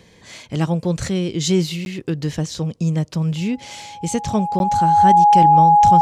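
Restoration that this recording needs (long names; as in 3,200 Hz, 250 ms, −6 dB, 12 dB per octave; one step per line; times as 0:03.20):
notch filter 830 Hz, Q 30
repair the gap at 0:01.85/0:04.59, 11 ms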